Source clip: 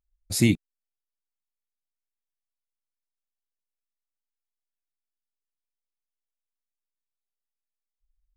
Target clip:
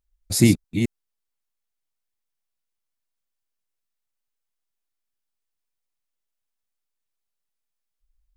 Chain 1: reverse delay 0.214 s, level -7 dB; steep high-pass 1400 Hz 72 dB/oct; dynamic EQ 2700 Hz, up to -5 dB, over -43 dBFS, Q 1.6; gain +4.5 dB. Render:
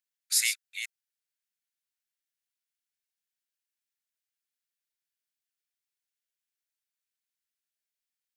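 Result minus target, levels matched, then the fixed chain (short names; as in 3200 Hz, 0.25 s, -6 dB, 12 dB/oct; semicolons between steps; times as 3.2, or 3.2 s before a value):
1000 Hz band -11.5 dB
reverse delay 0.214 s, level -7 dB; dynamic EQ 2700 Hz, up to -5 dB, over -43 dBFS, Q 1.6; gain +4.5 dB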